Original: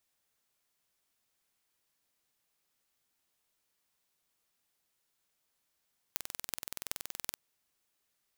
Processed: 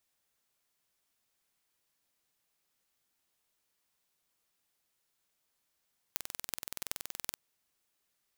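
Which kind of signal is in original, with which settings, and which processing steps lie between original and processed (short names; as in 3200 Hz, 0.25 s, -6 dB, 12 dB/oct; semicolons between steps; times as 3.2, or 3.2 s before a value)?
pulse train 21.2/s, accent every 8, -5.5 dBFS 1.20 s
crackling interface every 0.25 s, samples 256, repeat, from 0.32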